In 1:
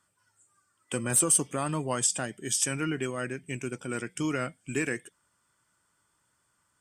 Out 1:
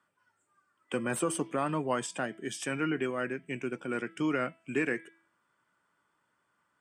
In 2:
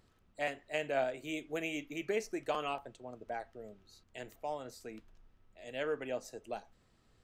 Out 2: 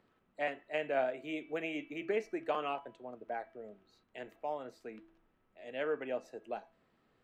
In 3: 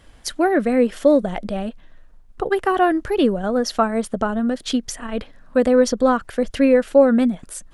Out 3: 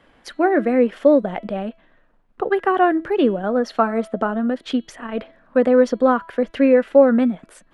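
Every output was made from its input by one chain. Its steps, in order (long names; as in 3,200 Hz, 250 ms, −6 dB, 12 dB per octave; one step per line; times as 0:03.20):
three-way crossover with the lows and the highs turned down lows −16 dB, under 160 Hz, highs −17 dB, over 3,200 Hz
hum removal 329.2 Hz, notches 13
level +1 dB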